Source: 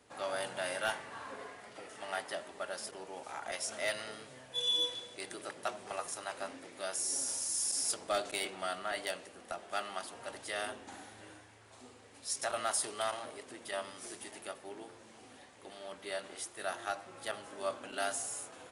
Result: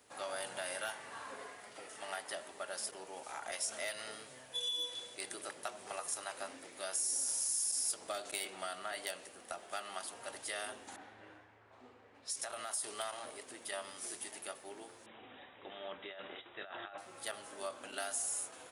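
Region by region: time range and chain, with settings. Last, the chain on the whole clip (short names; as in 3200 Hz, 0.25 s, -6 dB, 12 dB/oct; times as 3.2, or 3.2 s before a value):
10.96–12.92 low-pass opened by the level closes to 1500 Hz, open at -34.5 dBFS + compressor 3:1, threshold -39 dBFS
15.06–16.98 negative-ratio compressor -44 dBFS + brick-wall FIR low-pass 3900 Hz
whole clip: low shelf 320 Hz -6 dB; compressor, threshold -36 dBFS; high shelf 9000 Hz +10.5 dB; gain -1 dB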